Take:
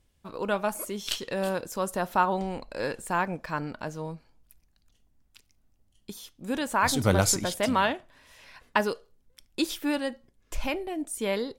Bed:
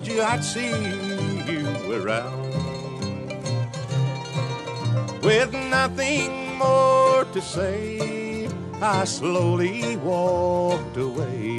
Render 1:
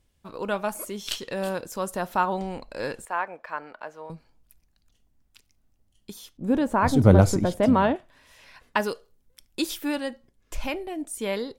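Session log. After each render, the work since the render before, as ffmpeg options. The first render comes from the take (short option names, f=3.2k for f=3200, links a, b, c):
-filter_complex "[0:a]asettb=1/sr,asplit=3[a][b][c];[a]atrim=end=3.054[d];[b]atrim=start=3.05:end=4.1,asetpts=PTS-STARTPTS,afade=t=in:d=0.004:c=qsin,afade=t=out:st=1.046:d=0.004:c=qsin,acrossover=split=430 2800:gain=0.0708 1 0.2[e][f][g];[e][f][g]amix=inputs=3:normalize=0[h];[c]atrim=start=4.096[i];[d][h]acrossfade=d=0.004:c1=hsin:c2=qsin[j];[j][i]acrossfade=d=0.004:c1=qsin:c2=hsin,asettb=1/sr,asplit=3[k][l][m];[k]atrim=end=6.374[n];[l]atrim=start=6.37:end=7.96,asetpts=PTS-STARTPTS,afade=t=in:d=0.004:c=qsin,afade=t=out:st=1.586:d=0.004:c=qsin,tiltshelf=f=1.2k:g=9.5[o];[m]atrim=start=7.956[p];[n][o]acrossfade=d=0.004:c1=hsin:c2=qsin[q];[q][p]acrossfade=d=0.004:c1=qsin:c2=hsin,asettb=1/sr,asplit=3[r][s][t];[r]atrim=end=8.834[u];[s]atrim=start=8.83:end=9.88,asetpts=PTS-STARTPTS,afade=t=in:d=0.004:c=qsin,afade=t=out:st=1.046:d=0.004:c=qsin,highshelf=f=8.8k:g=5.5[v];[t]atrim=start=9.876[w];[u][v]acrossfade=d=0.004:c1=hsin:c2=qsin[x];[x][w]acrossfade=d=0.004:c1=qsin:c2=hsin"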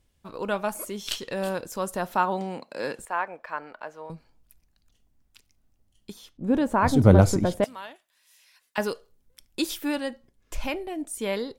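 -filter_complex "[0:a]asettb=1/sr,asplit=3[a][b][c];[a]atrim=end=2.154[d];[b]atrim=start=2.15:end=2.99,asetpts=PTS-STARTPTS,afade=t=in:d=0.004:c=qsin,afade=t=out:st=0.836:d=0.004:c=qsin,highpass=f=150:w=0.5412,highpass=f=150:w=1.3066[e];[c]atrim=start=2.986[f];[d][e]acrossfade=d=0.004:c1=hsin:c2=qsin[g];[g][f]acrossfade=d=0.004:c1=qsin:c2=hsin,asettb=1/sr,asplit=3[h][i][j];[h]atrim=end=6.124[k];[i]atrim=start=6.12:end=6.54,asetpts=PTS-STARTPTS,afade=t=in:d=0.004:c=qsin,afade=t=out:st=0.416:d=0.004:c=qsin,highshelf=f=6.1k:g=-9.5[l];[j]atrim=start=6.536[m];[k][l]acrossfade=d=0.004:c1=hsin:c2=qsin[n];[n][m]acrossfade=d=0.004:c1=qsin:c2=hsin,asettb=1/sr,asplit=3[o][p][q];[o]atrim=end=7.644[r];[p]atrim=start=7.64:end=8.78,asetpts=PTS-STARTPTS,afade=t=in:d=0.004:c=qsin,afade=t=out:st=1.136:d=0.004:c=qsin,aderivative[s];[q]atrim=start=8.776[t];[r][s]acrossfade=d=0.004:c1=hsin:c2=qsin[u];[u][t]acrossfade=d=0.004:c1=qsin:c2=hsin"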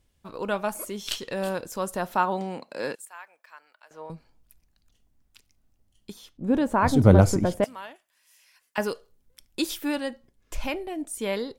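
-filter_complex "[0:a]asettb=1/sr,asplit=3[a][b][c];[a]atrim=end=2.954[d];[b]atrim=start=2.95:end=3.91,asetpts=PTS-STARTPTS,afade=t=in:d=0.004:c=qsin,afade=t=out:st=0.956:d=0.004:c=qsin,aderivative[e];[c]atrim=start=3.906[f];[d][e]acrossfade=d=0.004:c1=hsin:c2=qsin[g];[g][f]acrossfade=d=0.004:c1=qsin:c2=hsin,asettb=1/sr,asplit=3[h][i][j];[h]atrim=end=7.204[k];[i]atrim=start=7.2:end=8.9,asetpts=PTS-STARTPTS,afade=t=in:d=0.004:c=qsin,afade=t=out:st=1.696:d=0.004:c=qsin,equalizer=f=3.8k:w=5.3:g=-7[l];[j]atrim=start=8.896[m];[k][l]acrossfade=d=0.004:c1=hsin:c2=qsin[n];[n][m]acrossfade=d=0.004:c1=qsin:c2=hsin"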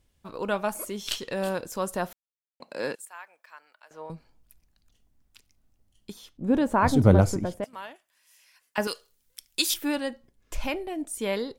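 -filter_complex "[0:a]asettb=1/sr,asplit=3[a][b][c];[a]atrim=end=8.874[d];[b]atrim=start=8.87:end=9.74,asetpts=PTS-STARTPTS,afade=t=in:d=0.004:c=qsin,afade=t=out:st=0.866:d=0.004:c=qsin,tiltshelf=f=1.3k:g=-9.5[e];[c]atrim=start=9.736[f];[d][e]acrossfade=d=0.004:c1=hsin:c2=qsin[g];[g][f]acrossfade=d=0.004:c1=qsin:c2=hsin,asplit=4[h][i][j][k];[h]atrim=end=2.13,asetpts=PTS-STARTPTS,afade=t=out:st=2.126:d=0.004:c=hsin[l];[i]atrim=start=2.13:end=2.6,asetpts=PTS-STARTPTS,volume=0[m];[j]atrim=start=2.6:end=7.73,asetpts=PTS-STARTPTS,afade=t=in:d=0.004:c=hsin,afade=t=out:st=4.25:d=0.88:silence=0.281838[n];[k]atrim=start=7.73,asetpts=PTS-STARTPTS,afade=t=in:d=0.004:c=hsin:silence=0.281838[o];[l][m][n][o]concat=n=4:v=0:a=1"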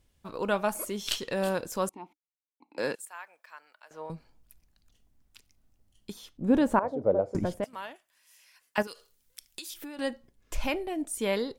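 -filter_complex "[0:a]asettb=1/sr,asplit=3[a][b][c];[a]atrim=end=1.894[d];[b]atrim=start=1.89:end=2.78,asetpts=PTS-STARTPTS,afade=t=in:d=0.004:c=qsin,afade=t=out:st=0.886:d=0.004:c=qsin,asplit=3[e][f][g];[e]bandpass=f=300:t=q:w=8,volume=0dB[h];[f]bandpass=f=870:t=q:w=8,volume=-6dB[i];[g]bandpass=f=2.24k:t=q:w=8,volume=-9dB[j];[h][i][j]amix=inputs=3:normalize=0[k];[c]atrim=start=2.776[l];[d][k]acrossfade=d=0.004:c1=hsin:c2=qsin[m];[m][l]acrossfade=d=0.004:c1=qsin:c2=hsin,asettb=1/sr,asplit=3[n][o][p];[n]atrim=end=6.794[q];[o]atrim=start=6.79:end=7.35,asetpts=PTS-STARTPTS,afade=t=in:d=0.004:c=qsin,afade=t=out:st=0.556:d=0.004:c=qsin,bandpass=f=540:t=q:w=3.4[r];[p]atrim=start=7.346[s];[q][r]acrossfade=d=0.004:c1=hsin:c2=qsin[t];[t][s]acrossfade=d=0.004:c1=qsin:c2=hsin,asettb=1/sr,asplit=3[u][v][w];[u]atrim=end=8.824[x];[v]atrim=start=8.82:end=9.99,asetpts=PTS-STARTPTS,afade=t=in:d=0.004:c=qsin,afade=t=out:st=1.166:d=0.004:c=qsin,acompressor=threshold=-38dB:ratio=8:attack=3.2:release=140:knee=1:detection=peak[y];[w]atrim=start=9.986[z];[x][y]acrossfade=d=0.004:c1=hsin:c2=qsin[aa];[aa][z]acrossfade=d=0.004:c1=qsin:c2=hsin"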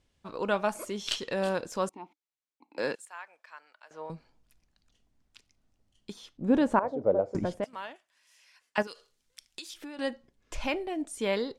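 -af "lowpass=7.1k,lowshelf=f=110:g=-6.5"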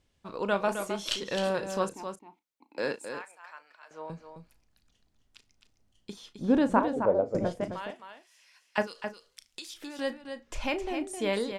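-filter_complex "[0:a]asplit=2[a][b];[b]adelay=35,volume=-13dB[c];[a][c]amix=inputs=2:normalize=0,aecho=1:1:263:0.398"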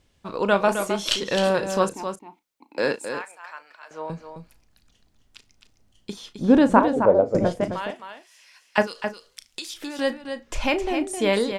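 -af "volume=8dB"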